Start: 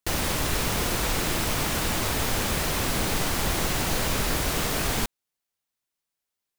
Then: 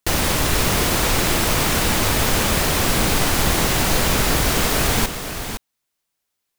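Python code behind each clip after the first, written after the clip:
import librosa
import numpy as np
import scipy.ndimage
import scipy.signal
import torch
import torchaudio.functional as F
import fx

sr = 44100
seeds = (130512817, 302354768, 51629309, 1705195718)

y = x + 10.0 ** (-9.0 / 20.0) * np.pad(x, (int(513 * sr / 1000.0), 0))[:len(x)]
y = y * 10.0 ** (7.0 / 20.0)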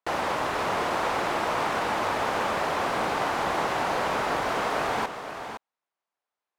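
y = fx.bandpass_q(x, sr, hz=870.0, q=1.2)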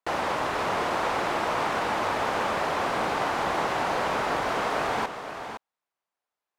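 y = fx.high_shelf(x, sr, hz=11000.0, db=-4.5)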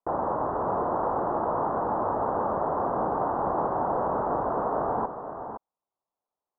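y = scipy.signal.sosfilt(scipy.signal.cheby2(4, 40, 2200.0, 'lowpass', fs=sr, output='sos'), x)
y = y * 10.0 ** (1.5 / 20.0)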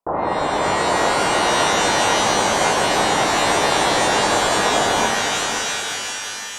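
y = fx.rev_shimmer(x, sr, seeds[0], rt60_s=3.2, semitones=12, shimmer_db=-2, drr_db=1.0)
y = y * 10.0 ** (5.0 / 20.0)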